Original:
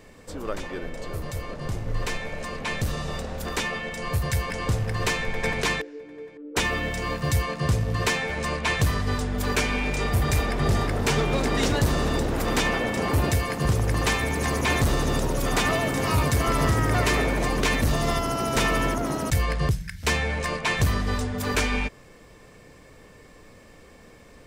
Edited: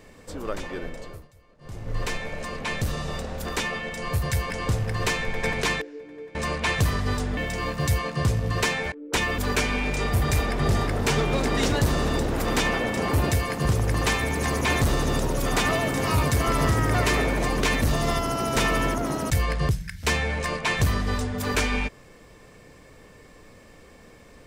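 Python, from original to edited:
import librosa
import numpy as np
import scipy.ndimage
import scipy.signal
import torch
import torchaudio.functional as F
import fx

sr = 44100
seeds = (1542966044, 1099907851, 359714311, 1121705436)

y = fx.edit(x, sr, fx.fade_down_up(start_s=0.86, length_s=1.14, db=-23.5, fade_s=0.42),
    fx.swap(start_s=6.35, length_s=0.46, other_s=8.36, other_length_s=1.02), tone=tone)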